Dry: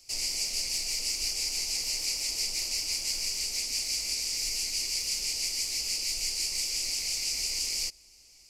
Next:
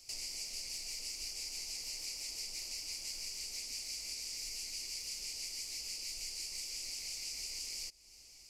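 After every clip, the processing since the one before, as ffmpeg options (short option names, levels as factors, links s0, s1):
-af "acompressor=threshold=0.00631:ratio=2.5,volume=0.891"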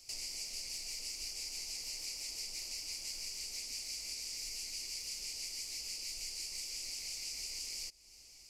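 -af anull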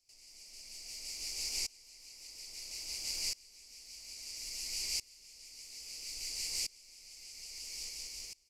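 -af "aecho=1:1:181|362|543|724|905|1086|1267|1448|1629:0.631|0.379|0.227|0.136|0.0818|0.0491|0.0294|0.0177|0.0106,aeval=exprs='val(0)*pow(10,-25*if(lt(mod(-0.6*n/s,1),2*abs(-0.6)/1000),1-mod(-0.6*n/s,1)/(2*abs(-0.6)/1000),(mod(-0.6*n/s,1)-2*abs(-0.6)/1000)/(1-2*abs(-0.6)/1000))/20)':c=same,volume=1.88"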